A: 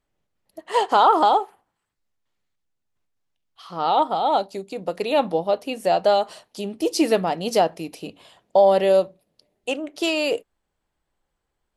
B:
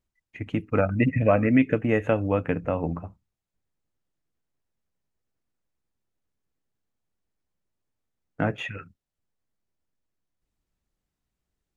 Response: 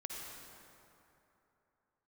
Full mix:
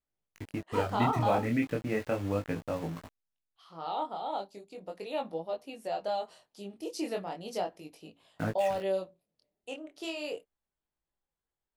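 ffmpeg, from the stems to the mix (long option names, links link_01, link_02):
-filter_complex "[0:a]volume=-12dB[link_01];[1:a]aeval=exprs='val(0)*gte(abs(val(0)),0.0237)':channel_layout=same,volume=-5.5dB[link_02];[link_01][link_02]amix=inputs=2:normalize=0,flanger=delay=18:depth=7.9:speed=0.36"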